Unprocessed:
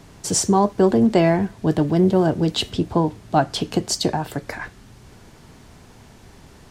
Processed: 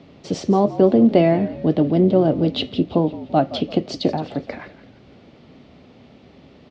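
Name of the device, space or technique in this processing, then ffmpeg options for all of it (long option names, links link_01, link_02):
frequency-shifting delay pedal into a guitar cabinet: -filter_complex "[0:a]asplit=5[link_01][link_02][link_03][link_04][link_05];[link_02]adelay=169,afreqshift=-52,volume=-15.5dB[link_06];[link_03]adelay=338,afreqshift=-104,volume=-23dB[link_07];[link_04]adelay=507,afreqshift=-156,volume=-30.6dB[link_08];[link_05]adelay=676,afreqshift=-208,volume=-38.1dB[link_09];[link_01][link_06][link_07][link_08][link_09]amix=inputs=5:normalize=0,highpass=94,equalizer=frequency=110:width_type=q:width=4:gain=-6,equalizer=frequency=260:width_type=q:width=4:gain=6,equalizer=frequency=560:width_type=q:width=4:gain=6,equalizer=frequency=960:width_type=q:width=4:gain=-8,equalizer=frequency=1600:width_type=q:width=4:gain=-10,lowpass=frequency=4000:width=0.5412,lowpass=frequency=4000:width=1.3066"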